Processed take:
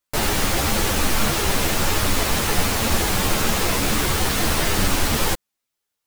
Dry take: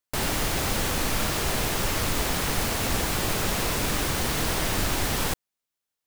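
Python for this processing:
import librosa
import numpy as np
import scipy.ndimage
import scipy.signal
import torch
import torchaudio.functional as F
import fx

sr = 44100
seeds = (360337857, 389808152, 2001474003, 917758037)

y = fx.ensemble(x, sr)
y = F.gain(torch.from_numpy(y), 8.5).numpy()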